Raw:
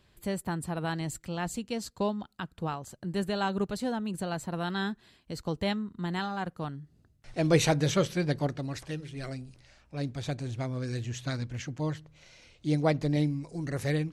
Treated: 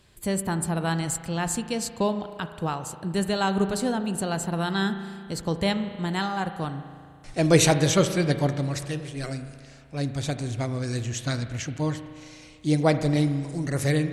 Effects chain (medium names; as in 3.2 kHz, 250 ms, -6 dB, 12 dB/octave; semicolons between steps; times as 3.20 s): peaking EQ 8.8 kHz +8 dB 1 oct; spring tank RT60 2.1 s, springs 36 ms, chirp 45 ms, DRR 9.5 dB; trim +5 dB